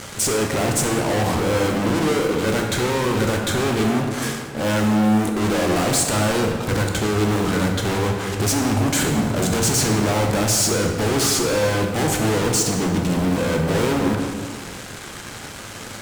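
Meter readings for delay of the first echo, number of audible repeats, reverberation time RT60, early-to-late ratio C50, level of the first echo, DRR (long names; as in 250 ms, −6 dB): no echo audible, no echo audible, 1.9 s, 3.5 dB, no echo audible, 1.5 dB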